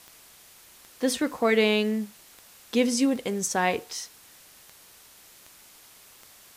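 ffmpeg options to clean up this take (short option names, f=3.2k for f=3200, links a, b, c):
-af "adeclick=t=4,afwtdn=0.0028"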